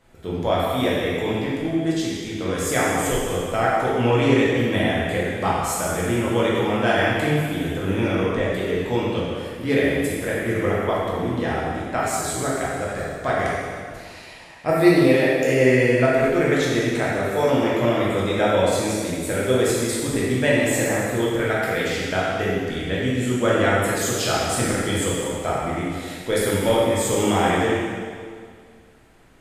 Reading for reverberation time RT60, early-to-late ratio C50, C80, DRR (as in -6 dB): 2.0 s, -2.5 dB, 0.0 dB, -7.0 dB